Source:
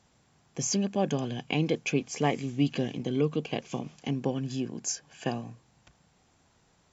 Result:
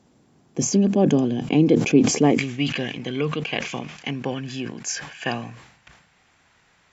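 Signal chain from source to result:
parametric band 290 Hz +13.5 dB 1.9 octaves, from 0:02.38 2,000 Hz
level that may fall only so fast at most 72 dB per second

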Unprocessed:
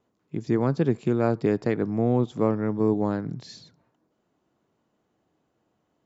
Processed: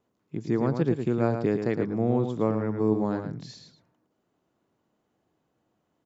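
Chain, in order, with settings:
slap from a distant wall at 19 metres, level −7 dB
level −2.5 dB

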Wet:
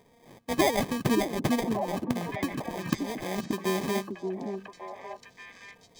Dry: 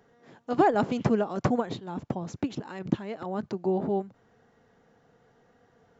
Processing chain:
in parallel at −2 dB: downward compressor, threshold −32 dBFS, peak gain reduction 14.5 dB
on the sum: sample-rate reduction 1,400 Hz, jitter 0%
echo through a band-pass that steps 576 ms, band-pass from 280 Hz, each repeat 1.4 octaves, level −1.5 dB
level −4 dB

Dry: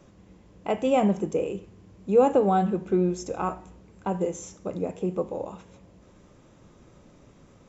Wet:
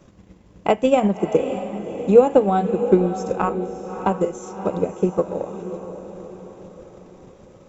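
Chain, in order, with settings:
transient designer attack +9 dB, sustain −4 dB
feedback delay with all-pass diffusion 613 ms, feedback 49%, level −10 dB
level +2 dB

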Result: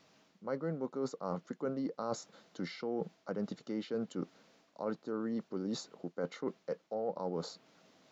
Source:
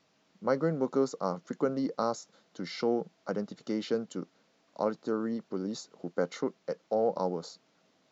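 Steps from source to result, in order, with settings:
dynamic equaliser 6,100 Hz, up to −7 dB, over −59 dBFS, Q 1.2
reversed playback
downward compressor 6 to 1, threshold −38 dBFS, peak gain reduction 15.5 dB
reversed playback
level +4 dB

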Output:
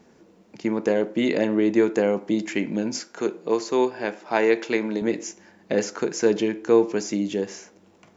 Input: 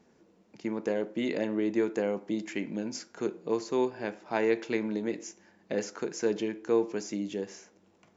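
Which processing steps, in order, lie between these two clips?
0:03.00–0:05.02: high-pass filter 290 Hz 6 dB per octave
level +8.5 dB

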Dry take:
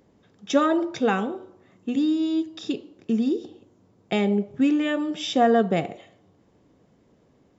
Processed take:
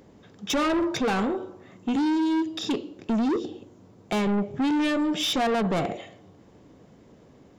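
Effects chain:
in parallel at +2.5 dB: brickwall limiter −17.5 dBFS, peak gain reduction 10 dB
on the sum: soft clipping −21.5 dBFS, distortion −7 dB

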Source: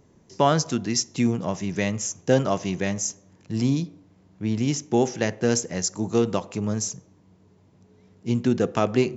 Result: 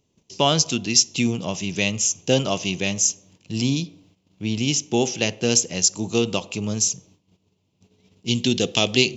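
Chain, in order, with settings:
noise gate −54 dBFS, range −13 dB
high shelf with overshoot 2,200 Hz +7.5 dB, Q 3, from 0:08.28 +13.5 dB

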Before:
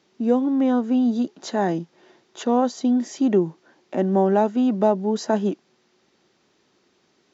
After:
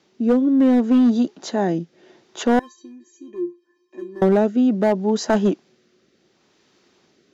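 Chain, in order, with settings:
rotating-speaker cabinet horn 0.7 Hz
hard clipping −16 dBFS, distortion −17 dB
0:02.59–0:04.22: tuned comb filter 350 Hz, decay 0.22 s, harmonics odd, mix 100%
level +5.5 dB

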